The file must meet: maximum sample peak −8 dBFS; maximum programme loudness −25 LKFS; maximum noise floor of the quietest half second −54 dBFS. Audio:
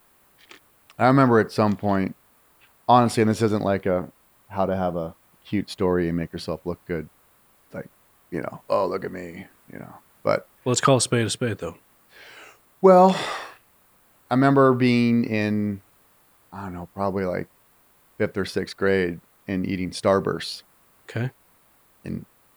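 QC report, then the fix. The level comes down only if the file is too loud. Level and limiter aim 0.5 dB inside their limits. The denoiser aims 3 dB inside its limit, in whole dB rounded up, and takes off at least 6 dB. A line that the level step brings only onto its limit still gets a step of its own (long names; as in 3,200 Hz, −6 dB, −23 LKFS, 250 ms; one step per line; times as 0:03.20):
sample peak −4.0 dBFS: out of spec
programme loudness −22.5 LKFS: out of spec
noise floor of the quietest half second −59 dBFS: in spec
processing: level −3 dB
brickwall limiter −8.5 dBFS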